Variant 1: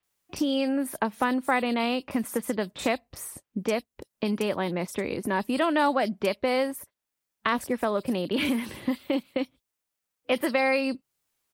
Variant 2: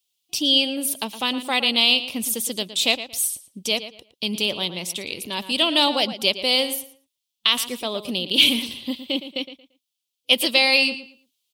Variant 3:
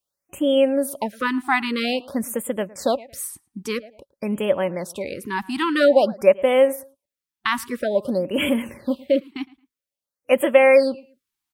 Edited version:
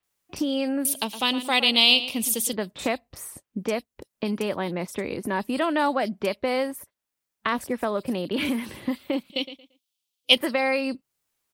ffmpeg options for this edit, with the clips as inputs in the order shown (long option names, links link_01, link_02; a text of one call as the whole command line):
ffmpeg -i take0.wav -i take1.wav -filter_complex "[1:a]asplit=2[link_01][link_02];[0:a]asplit=3[link_03][link_04][link_05];[link_03]atrim=end=0.852[link_06];[link_01]atrim=start=0.848:end=2.532[link_07];[link_04]atrim=start=2.528:end=9.302[link_08];[link_02]atrim=start=9.298:end=10.372[link_09];[link_05]atrim=start=10.368[link_10];[link_06][link_07]acrossfade=duration=0.004:curve1=hsin:curve2=hsin[link_11];[link_11][link_08]acrossfade=duration=0.004:curve1=hsin:curve2=hsin[link_12];[link_12][link_09]acrossfade=duration=0.004:curve1=hsin:curve2=hsin[link_13];[link_13][link_10]acrossfade=duration=0.004:curve1=hsin:curve2=hsin" out.wav